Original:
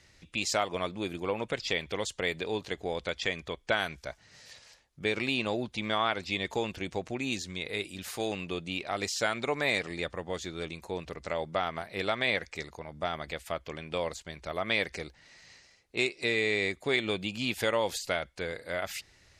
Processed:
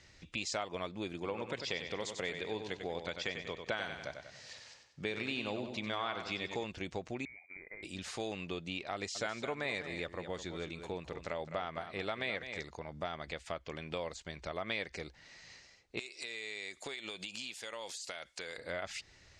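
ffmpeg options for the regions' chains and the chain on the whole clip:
-filter_complex "[0:a]asettb=1/sr,asplit=3[a][b][c];[a]atrim=end=1.134[d];[b]atrim=start=1.13:end=6.64,asetpts=PTS-STARTPTS,afade=t=in:d=0.004:c=qsin,afade=t=out:st=5.506:d=0.004:c=qsin,highpass=76,aecho=1:1:95|190|285|380|475:0.398|0.171|0.0736|0.0317|0.0136,atrim=end_sample=242991[e];[c]atrim=start=6.636[f];[d][e]acrossfade=d=0.004:c1=hsin:c2=qsin[g];[g][f]acrossfade=d=0.004:c1=qsin:c2=hsin,asettb=1/sr,asplit=3[h][i][j];[h]atrim=end=7.254[k];[i]atrim=start=7.25:end=7.83,asetpts=PTS-STARTPTS,afade=t=in:d=0.004:c=qsin,afade=t=out:st=0.576:d=0.004:c=qsin,agate=range=-22dB:threshold=-40dB:ratio=16:release=100:detection=peak,acompressor=threshold=-42dB:ratio=12:attack=3.2:release=140:knee=1:detection=peak,lowpass=f=2.1k:t=q:w=0.5098,lowpass=f=2.1k:t=q:w=0.6013,lowpass=f=2.1k:t=q:w=0.9,lowpass=f=2.1k:t=q:w=2.563,afreqshift=-2500[l];[j]atrim=start=7.826[m];[k][l]acrossfade=d=0.004:c1=hsin:c2=qsin[n];[n][m]acrossfade=d=0.004:c1=qsin:c2=hsin,asettb=1/sr,asplit=3[o][p][q];[o]atrim=end=8.944[r];[p]atrim=start=8.94:end=12.6,asetpts=PTS-STARTPTS,afade=t=in:d=0.004:c=qsin,afade=t=out:st=3.656:d=0.004:c=qsin,equalizer=f=5.2k:t=o:w=0.95:g=-3,aecho=1:1:210:0.266,atrim=end_sample=161406[s];[q]atrim=start=12.596[t];[r][s]acrossfade=d=0.004:c1=hsin:c2=qsin[u];[u][t]acrossfade=d=0.004:c1=qsin:c2=hsin,asettb=1/sr,asplit=3[v][w][x];[v]atrim=end=15.994[y];[w]atrim=start=15.99:end=18.58,asetpts=PTS-STARTPTS,afade=t=in:d=0.004:c=qsin,afade=t=out:st=2.586:d=0.004:c=qsin,aemphasis=mode=production:type=riaa,acompressor=threshold=-36dB:ratio=8:attack=3.2:release=140:knee=1:detection=peak[z];[x]atrim=start=18.576[aa];[y][z]acrossfade=d=0.004:c1=hsin:c2=qsin[ab];[ab][aa]acrossfade=d=0.004:c1=qsin:c2=hsin,acompressor=threshold=-40dB:ratio=2,lowpass=f=7.8k:w=0.5412,lowpass=f=7.8k:w=1.3066"

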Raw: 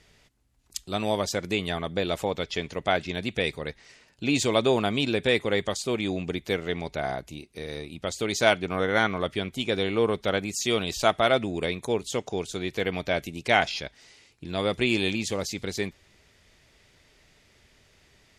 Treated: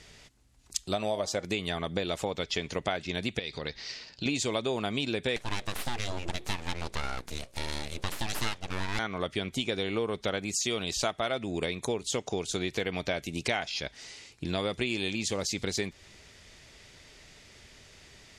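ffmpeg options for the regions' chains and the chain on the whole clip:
-filter_complex "[0:a]asettb=1/sr,asplit=3[a][b][c];[a]atrim=end=0.934[d];[b]atrim=start=0.93:end=1.45,asetpts=PTS-STARTPTS,afade=t=in:d=0.004:c=qsin,afade=t=out:st=0.516:d=0.004:c=qsin,equalizer=f=630:w=2.7:g=8.5,bandreject=f=158.8:t=h:w=4,bandreject=f=317.6:t=h:w=4,bandreject=f=476.4:t=h:w=4,bandreject=f=635.2:t=h:w=4,bandreject=f=794:t=h:w=4,bandreject=f=952.8:t=h:w=4,bandreject=f=1.1116k:t=h:w=4,bandreject=f=1.2704k:t=h:w=4,bandreject=f=1.4292k:t=h:w=4,bandreject=f=1.588k:t=h:w=4,bandreject=f=1.7468k:t=h:w=4,bandreject=f=1.9056k:t=h:w=4[e];[c]atrim=start=1.446[f];[d][e]acrossfade=d=0.004:c1=hsin:c2=qsin[g];[g][f]acrossfade=d=0.004:c1=qsin:c2=hsin,asettb=1/sr,asplit=3[h][i][j];[h]atrim=end=3.394[k];[i]atrim=start=3.39:end=4.26,asetpts=PTS-STARTPTS,afade=t=in:d=0.004:c=qsin,afade=t=out:st=0.866:d=0.004:c=qsin,acompressor=threshold=-38dB:ratio=3:attack=3.2:release=140:knee=1:detection=peak,lowpass=f=4.7k:t=q:w=3.3[l];[j]atrim=start=4.256[m];[k][l]acrossfade=d=0.004:c1=hsin:c2=qsin[n];[n][m]acrossfade=d=0.004:c1=qsin:c2=hsin,asettb=1/sr,asplit=3[o][p][q];[o]atrim=end=5.364[r];[p]atrim=start=5.36:end=8.99,asetpts=PTS-STARTPTS,afade=t=in:d=0.004:c=qsin,afade=t=out:st=3.626:d=0.004:c=qsin,highshelf=f=9.8k:g=9,bandreject=f=60:t=h:w=6,bandreject=f=120:t=h:w=6,bandreject=f=180:t=h:w=6,bandreject=f=240:t=h:w=6,bandreject=f=300:t=h:w=6,aeval=exprs='abs(val(0))':c=same[s];[q]atrim=start=8.986[t];[r][s]acrossfade=d=0.004:c1=hsin:c2=qsin[u];[u][t]acrossfade=d=0.004:c1=qsin:c2=hsin,lowpass=8.3k,highshelf=f=5.1k:g=8,acompressor=threshold=-33dB:ratio=6,volume=5dB"

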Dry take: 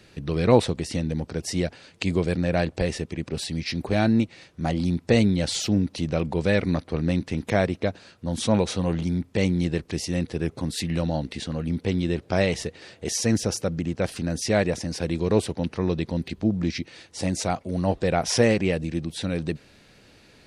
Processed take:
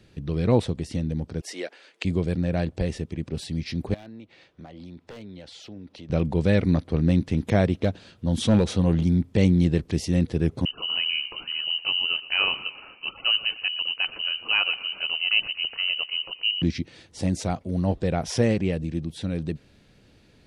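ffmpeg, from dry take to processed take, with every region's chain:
-filter_complex "[0:a]asettb=1/sr,asplit=3[a][b][c];[a]atrim=end=1.414[d];[b]atrim=start=1.41:end=2.05,asetpts=PTS-STARTPTS,afade=t=in:d=0.004:c=qsin,afade=t=out:st=0.636:d=0.004:c=qsin,highpass=f=360:w=0.5412,highpass=f=360:w=1.3066,equalizer=f=1.9k:t=o:w=1.5:g=6.5[e];[c]atrim=start=2.046[f];[d][e]acrossfade=d=0.004:c1=hsin:c2=qsin[g];[g][f]acrossfade=d=0.004:c1=qsin:c2=hsin,asettb=1/sr,asplit=3[h][i][j];[h]atrim=end=3.944[k];[i]atrim=start=3.94:end=6.1,asetpts=PTS-STARTPTS,afade=t=in:d=0.004:c=qsin,afade=t=out:st=2.156:d=0.004:c=qsin,acrossover=split=350 4900:gain=0.224 1 0.224[l][m][n];[l][m][n]amix=inputs=3:normalize=0,aeval=exprs='0.126*(abs(mod(val(0)/0.126+3,4)-2)-1)':c=same,acompressor=threshold=-39dB:ratio=5:attack=3.2:release=140:knee=1:detection=peak[o];[j]atrim=start=6.096[p];[k][o]acrossfade=d=0.004:c1=hsin:c2=qsin[q];[q][p]acrossfade=d=0.004:c1=qsin:c2=hsin,asettb=1/sr,asplit=3[r][s][t];[r]atrim=end=7.684[u];[s]atrim=start=7.68:end=8.64,asetpts=PTS-STARTPTS,afade=t=in:d=0.004:c=qsin,afade=t=out:st=0.956:d=0.004:c=qsin,equalizer=f=3.2k:t=o:w=0.58:g=4,asoftclip=type=hard:threshold=-14.5dB[v];[t]atrim=start=8.636[w];[u][v]acrossfade=d=0.004:c1=hsin:c2=qsin[x];[x][w]acrossfade=d=0.004:c1=qsin:c2=hsin,asettb=1/sr,asplit=3[y][z][aa];[y]atrim=end=10.654[ab];[z]atrim=start=10.65:end=16.62,asetpts=PTS-STARTPTS,afade=t=in:d=0.004:c=qsin,afade=t=out:st=5.966:d=0.004:c=qsin,asplit=6[ac][ad][ae][af][ag][ah];[ad]adelay=117,afreqshift=39,volume=-17dB[ai];[ae]adelay=234,afreqshift=78,volume=-22.4dB[aj];[af]adelay=351,afreqshift=117,volume=-27.7dB[ak];[ag]adelay=468,afreqshift=156,volume=-33.1dB[al];[ah]adelay=585,afreqshift=195,volume=-38.4dB[am];[ac][ai][aj][ak][al][am]amix=inputs=6:normalize=0,atrim=end_sample=263277,lowpass=f=2.6k:t=q:w=0.5098,lowpass=f=2.6k:t=q:w=0.6013,lowpass=f=2.6k:t=q:w=0.9,lowpass=f=2.6k:t=q:w=2.563,afreqshift=-3100[an];[aa]atrim=start=16.616[ao];[ab][an]acrossfade=d=0.004:c1=hsin:c2=qsin[ap];[ap][ao]acrossfade=d=0.004:c1=qsin:c2=hsin,equalizer=f=3.3k:t=o:w=0.29:g=3.5,dynaudnorm=f=490:g=17:m=11.5dB,lowshelf=f=370:g=9.5,volume=-8dB"

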